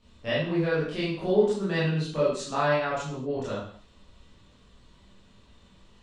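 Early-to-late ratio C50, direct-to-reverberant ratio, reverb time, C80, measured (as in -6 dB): 1.5 dB, -10.5 dB, no single decay rate, 6.0 dB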